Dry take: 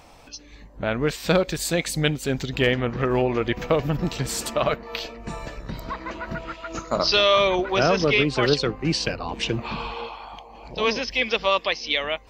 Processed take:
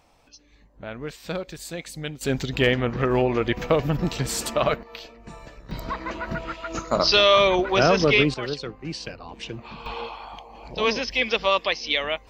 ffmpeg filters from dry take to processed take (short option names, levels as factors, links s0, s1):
-af "asetnsamples=n=441:p=0,asendcmd='2.21 volume volume 0.5dB;4.83 volume volume -8.5dB;5.71 volume volume 1.5dB;8.34 volume volume -9.5dB;9.86 volume volume 0dB',volume=0.299"